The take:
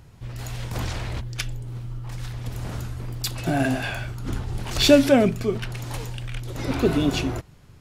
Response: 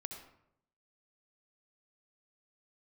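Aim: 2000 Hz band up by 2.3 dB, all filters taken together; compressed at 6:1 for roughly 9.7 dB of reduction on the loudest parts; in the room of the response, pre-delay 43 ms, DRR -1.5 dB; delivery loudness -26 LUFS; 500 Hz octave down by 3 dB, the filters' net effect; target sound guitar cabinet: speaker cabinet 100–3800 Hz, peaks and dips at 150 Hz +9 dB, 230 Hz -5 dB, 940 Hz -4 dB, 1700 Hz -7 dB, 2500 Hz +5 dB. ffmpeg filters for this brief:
-filter_complex "[0:a]equalizer=f=500:t=o:g=-3.5,equalizer=f=2k:t=o:g=3.5,acompressor=threshold=-22dB:ratio=6,asplit=2[a][b];[1:a]atrim=start_sample=2205,adelay=43[c];[b][c]afir=irnorm=-1:irlink=0,volume=4dB[d];[a][d]amix=inputs=2:normalize=0,highpass=100,equalizer=f=150:t=q:w=4:g=9,equalizer=f=230:t=q:w=4:g=-5,equalizer=f=940:t=q:w=4:g=-4,equalizer=f=1.7k:t=q:w=4:g=-7,equalizer=f=2.5k:t=q:w=4:g=5,lowpass=f=3.8k:w=0.5412,lowpass=f=3.8k:w=1.3066,volume=-1dB"

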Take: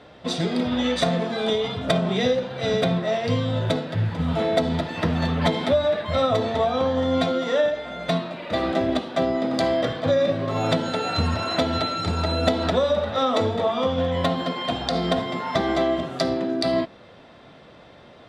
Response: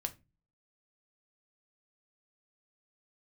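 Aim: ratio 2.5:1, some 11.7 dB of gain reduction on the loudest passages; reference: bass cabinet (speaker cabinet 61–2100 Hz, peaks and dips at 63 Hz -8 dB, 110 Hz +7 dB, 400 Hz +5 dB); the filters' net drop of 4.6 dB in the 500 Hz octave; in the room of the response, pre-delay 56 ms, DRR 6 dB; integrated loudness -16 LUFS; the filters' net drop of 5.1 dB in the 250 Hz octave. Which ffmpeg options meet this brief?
-filter_complex "[0:a]equalizer=f=250:t=o:g=-6,equalizer=f=500:t=o:g=-6,acompressor=threshold=-38dB:ratio=2.5,asplit=2[a][b];[1:a]atrim=start_sample=2205,adelay=56[c];[b][c]afir=irnorm=-1:irlink=0,volume=-6dB[d];[a][d]amix=inputs=2:normalize=0,highpass=f=61:w=0.5412,highpass=f=61:w=1.3066,equalizer=f=63:t=q:w=4:g=-8,equalizer=f=110:t=q:w=4:g=7,equalizer=f=400:t=q:w=4:g=5,lowpass=f=2.1k:w=0.5412,lowpass=f=2.1k:w=1.3066,volume=19.5dB"

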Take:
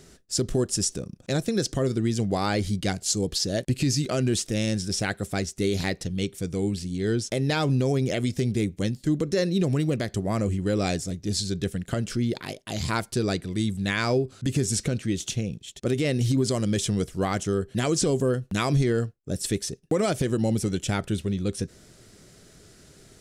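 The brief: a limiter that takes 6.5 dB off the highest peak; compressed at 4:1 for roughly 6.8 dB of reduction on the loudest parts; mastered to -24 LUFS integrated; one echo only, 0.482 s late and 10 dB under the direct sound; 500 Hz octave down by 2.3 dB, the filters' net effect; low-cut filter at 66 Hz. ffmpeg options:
-af "highpass=66,equalizer=f=500:t=o:g=-3,acompressor=threshold=-28dB:ratio=4,alimiter=limit=-23dB:level=0:latency=1,aecho=1:1:482:0.316,volume=9dB"

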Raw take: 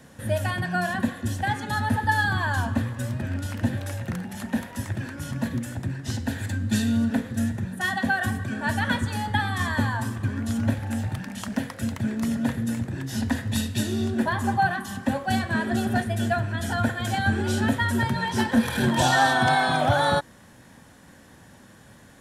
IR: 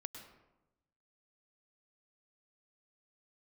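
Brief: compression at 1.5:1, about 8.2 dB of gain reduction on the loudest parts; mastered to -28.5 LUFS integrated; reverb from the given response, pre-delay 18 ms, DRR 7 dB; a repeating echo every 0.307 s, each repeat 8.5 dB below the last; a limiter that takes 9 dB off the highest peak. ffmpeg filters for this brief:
-filter_complex "[0:a]acompressor=threshold=-40dB:ratio=1.5,alimiter=level_in=2dB:limit=-24dB:level=0:latency=1,volume=-2dB,aecho=1:1:307|614|921|1228:0.376|0.143|0.0543|0.0206,asplit=2[a][b];[1:a]atrim=start_sample=2205,adelay=18[c];[b][c]afir=irnorm=-1:irlink=0,volume=-3.5dB[d];[a][d]amix=inputs=2:normalize=0,volume=4.5dB"

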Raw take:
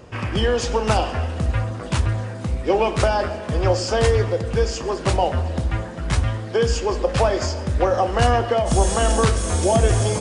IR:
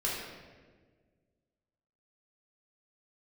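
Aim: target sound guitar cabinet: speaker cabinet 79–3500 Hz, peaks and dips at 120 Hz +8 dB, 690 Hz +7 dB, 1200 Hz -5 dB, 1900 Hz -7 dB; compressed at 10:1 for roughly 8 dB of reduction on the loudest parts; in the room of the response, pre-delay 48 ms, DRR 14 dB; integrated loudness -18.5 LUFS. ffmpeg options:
-filter_complex "[0:a]acompressor=threshold=-20dB:ratio=10,asplit=2[a][b];[1:a]atrim=start_sample=2205,adelay=48[c];[b][c]afir=irnorm=-1:irlink=0,volume=-20.5dB[d];[a][d]amix=inputs=2:normalize=0,highpass=79,equalizer=f=120:t=q:w=4:g=8,equalizer=f=690:t=q:w=4:g=7,equalizer=f=1.2k:t=q:w=4:g=-5,equalizer=f=1.9k:t=q:w=4:g=-7,lowpass=f=3.5k:w=0.5412,lowpass=f=3.5k:w=1.3066,volume=6dB"

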